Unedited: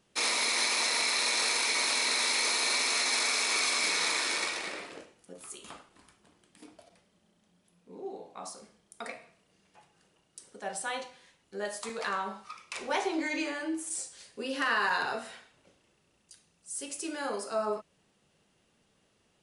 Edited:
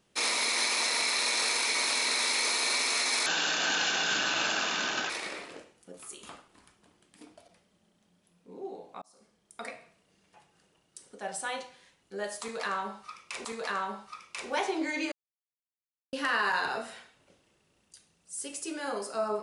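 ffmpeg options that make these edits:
-filter_complex "[0:a]asplit=7[a][b][c][d][e][f][g];[a]atrim=end=3.264[h];[b]atrim=start=3.26:end=4.51,asetpts=PTS-STARTPTS,asetrate=29988,aresample=44100,atrim=end_sample=81066,asetpts=PTS-STARTPTS[i];[c]atrim=start=4.506:end=8.43,asetpts=PTS-STARTPTS,afade=t=out:st=3.92:d=0.004:c=hsin[j];[d]atrim=start=8.43:end=12.862,asetpts=PTS-STARTPTS,afade=t=in:d=0.6[k];[e]atrim=start=11.818:end=13.49,asetpts=PTS-STARTPTS,afade=t=out:st=1.668:d=0.004:c=hsin[l];[f]atrim=start=13.49:end=14.5,asetpts=PTS-STARTPTS,volume=0[m];[g]atrim=start=14.5,asetpts=PTS-STARTPTS,afade=t=in:d=0.004:c=hsin[n];[h][i]acrossfade=d=0.004:c1=hsin:c2=hsin[o];[j][k]concat=n=2:v=0:a=1[p];[o][p]acrossfade=d=0.004:c1=hsin:c2=hsin[q];[l][m][n]concat=n=3:v=0:a=1[r];[q][r]acrossfade=d=0.004:c1=hsin:c2=hsin"

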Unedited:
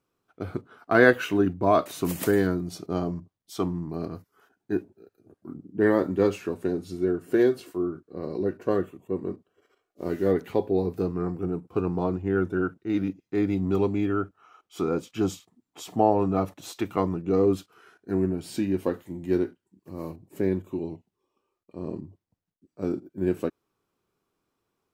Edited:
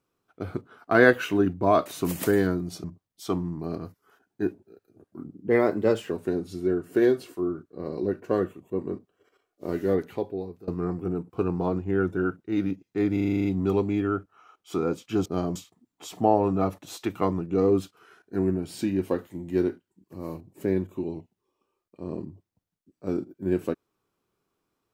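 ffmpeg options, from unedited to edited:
-filter_complex "[0:a]asplit=15[a][b][c][d][e][f][g][h][i][j][k][l][m][n][o];[a]atrim=end=2.842[p];[b]atrim=start=3.138:end=5.794[q];[c]atrim=start=5.79:end=6.48,asetpts=PTS-STARTPTS,asetrate=49392,aresample=44100[r];[d]atrim=start=6.476:end=11.05,asetpts=PTS-STARTPTS,afade=t=out:st=3.704:d=0.87:silence=0.0707946[s];[e]atrim=start=11.05:end=13.542,asetpts=PTS-STARTPTS,afade=t=in:d=0.004:c=hsin:silence=0.0707946[t];[f]atrim=start=13.498:end=13.542[u];[g]atrim=start=13.498:end=13.542[v];[h]atrim=start=13.498:end=13.542[w];[i]atrim=start=13.498:end=13.542[x];[j]atrim=start=13.498:end=13.542[y];[k]atrim=start=13.498:end=13.542[z];[l]atrim=start=13.498:end=13.542[aa];[m]atrim=start=13.498:end=15.312[ab];[n]atrim=start=2.838:end=3.142[ac];[o]atrim=start=15.308[ad];[p][q]acrossfade=d=0.004:c1=hsin:c2=hsin[ae];[ae][r]acrossfade=d=0.004:c1=hsin:c2=hsin[af];[s][t]concat=n=2:v=0:a=1[ag];[af][ag]acrossfade=d=0.004:c1=hsin:c2=hsin[ah];[ah][u]acrossfade=d=0.004:c1=hsin:c2=hsin[ai];[ai][v]acrossfade=d=0.004:c1=hsin:c2=hsin[aj];[aj][w]acrossfade=d=0.004:c1=hsin:c2=hsin[ak];[ak][x]acrossfade=d=0.004:c1=hsin:c2=hsin[al];[al][y]acrossfade=d=0.004:c1=hsin:c2=hsin[am];[am][z]acrossfade=d=0.004:c1=hsin:c2=hsin[an];[an][aa]acrossfade=d=0.004:c1=hsin:c2=hsin[ao];[ao][ab]acrossfade=d=0.004:c1=hsin:c2=hsin[ap];[ap][ac]acrossfade=d=0.004:c1=hsin:c2=hsin[aq];[aq][ad]acrossfade=d=0.004:c1=hsin:c2=hsin"

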